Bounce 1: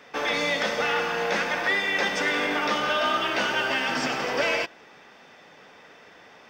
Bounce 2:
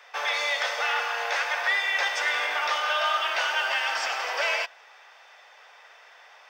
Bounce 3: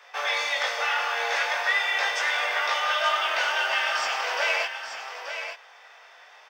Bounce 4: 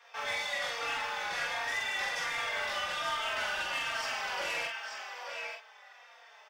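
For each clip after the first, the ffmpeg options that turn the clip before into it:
ffmpeg -i in.wav -af "highpass=frequency=650:width=0.5412,highpass=frequency=650:width=1.3066" out.wav
ffmpeg -i in.wav -af "flanger=delay=18.5:depth=4.7:speed=0.38,aecho=1:1:880:0.376,volume=3.5dB" out.wav
ffmpeg -i in.wav -filter_complex "[0:a]asoftclip=type=tanh:threshold=-24.5dB,asplit=2[link_01][link_02];[link_02]adelay=45,volume=-2.5dB[link_03];[link_01][link_03]amix=inputs=2:normalize=0,asplit=2[link_04][link_05];[link_05]adelay=3.8,afreqshift=-1.3[link_06];[link_04][link_06]amix=inputs=2:normalize=1,volume=-4dB" out.wav

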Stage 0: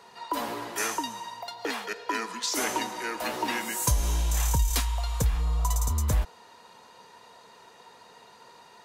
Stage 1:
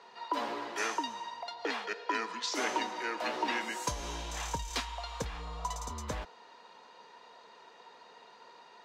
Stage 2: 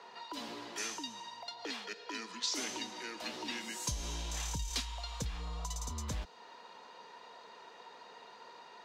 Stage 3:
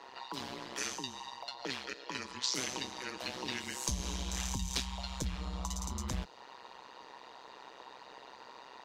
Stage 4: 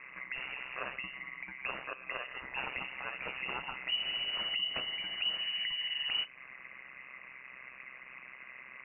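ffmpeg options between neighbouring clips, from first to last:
ffmpeg -i in.wav -filter_complex "[0:a]acrossover=split=220 6000:gain=0.178 1 0.0708[link_01][link_02][link_03];[link_01][link_02][link_03]amix=inputs=3:normalize=0,volume=-2.5dB" out.wav
ffmpeg -i in.wav -filter_complex "[0:a]acrossover=split=250|3000[link_01][link_02][link_03];[link_02]acompressor=threshold=-50dB:ratio=4[link_04];[link_01][link_04][link_03]amix=inputs=3:normalize=0,volume=2dB" out.wav
ffmpeg -i in.wav -af "tremolo=f=130:d=0.974,volume=5.5dB" out.wav
ffmpeg -i in.wav -af "lowpass=frequency=2600:width_type=q:width=0.5098,lowpass=frequency=2600:width_type=q:width=0.6013,lowpass=frequency=2600:width_type=q:width=0.9,lowpass=frequency=2600:width_type=q:width=2.563,afreqshift=-3000,volume=2.5dB" out.wav

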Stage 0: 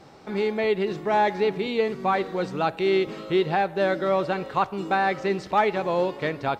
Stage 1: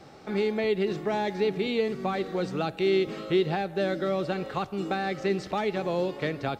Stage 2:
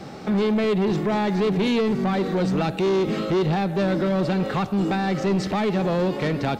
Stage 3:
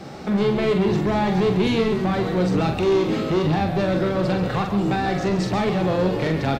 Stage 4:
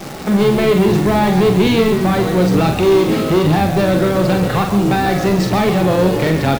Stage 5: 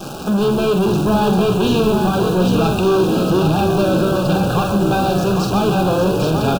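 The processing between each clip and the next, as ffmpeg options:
ffmpeg -i in.wav -filter_complex "[0:a]bandreject=frequency=980:width=8.8,acrossover=split=400|3000[link_01][link_02][link_03];[link_02]acompressor=threshold=-30dB:ratio=6[link_04];[link_01][link_04][link_03]amix=inputs=3:normalize=0" out.wav
ffmpeg -i in.wav -filter_complex "[0:a]equalizer=frequency=200:width_type=o:width=0.79:gain=7.5,asplit=2[link_01][link_02];[link_02]alimiter=limit=-23dB:level=0:latency=1:release=39,volume=3dB[link_03];[link_01][link_03]amix=inputs=2:normalize=0,asoftclip=type=tanh:threshold=-19.5dB,volume=2.5dB" out.wav
ffmpeg -i in.wav -filter_complex "[0:a]asplit=2[link_01][link_02];[link_02]adelay=44,volume=-5.5dB[link_03];[link_01][link_03]amix=inputs=2:normalize=0,asplit=2[link_04][link_05];[link_05]asplit=4[link_06][link_07][link_08][link_09];[link_06]adelay=136,afreqshift=-65,volume=-9dB[link_10];[link_07]adelay=272,afreqshift=-130,volume=-18.9dB[link_11];[link_08]adelay=408,afreqshift=-195,volume=-28.8dB[link_12];[link_09]adelay=544,afreqshift=-260,volume=-38.7dB[link_13];[link_10][link_11][link_12][link_13]amix=inputs=4:normalize=0[link_14];[link_04][link_14]amix=inputs=2:normalize=0" out.wav
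ffmpeg -i in.wav -af "acrusher=bits=7:dc=4:mix=0:aa=0.000001,volume=7dB" out.wav
ffmpeg -i in.wav -filter_complex "[0:a]asoftclip=type=tanh:threshold=-11dB,asuperstop=centerf=2000:order=20:qfactor=2.7,asplit=2[link_01][link_02];[link_02]aecho=0:1:803:0.531[link_03];[link_01][link_03]amix=inputs=2:normalize=0" out.wav

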